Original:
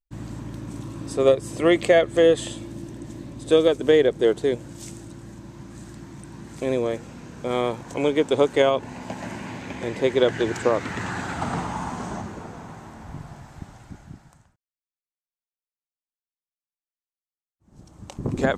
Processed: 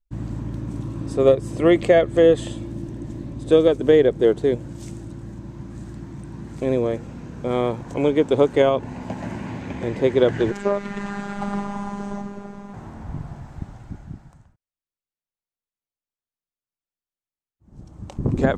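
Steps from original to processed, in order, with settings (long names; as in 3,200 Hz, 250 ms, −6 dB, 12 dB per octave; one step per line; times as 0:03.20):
spectral tilt −2 dB per octave
0:10.51–0:12.74: phases set to zero 201 Hz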